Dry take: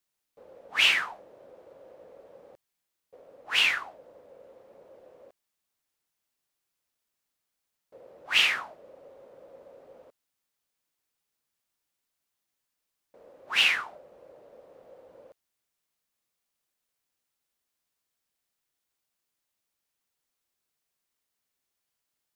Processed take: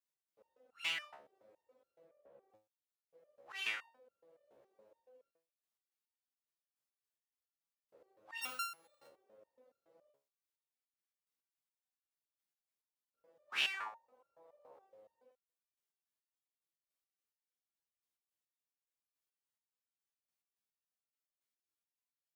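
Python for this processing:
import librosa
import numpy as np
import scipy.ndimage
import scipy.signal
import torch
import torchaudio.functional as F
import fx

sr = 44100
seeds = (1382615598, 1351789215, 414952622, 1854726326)

y = fx.sample_sort(x, sr, block=32, at=(8.41, 9.07))
y = scipy.signal.sosfilt(scipy.signal.butter(2, 42.0, 'highpass', fs=sr, output='sos'), y)
y = fx.low_shelf(y, sr, hz=83.0, db=-7.5)
y = fx.lowpass(y, sr, hz=2500.0, slope=12, at=(2.06, 2.49))
y = fx.peak_eq(y, sr, hz=920.0, db=13.5, octaves=0.85, at=(13.73, 14.86))
y = fx.resonator_held(y, sr, hz=7.1, low_hz=70.0, high_hz=1400.0)
y = y * 10.0 ** (-3.5 / 20.0)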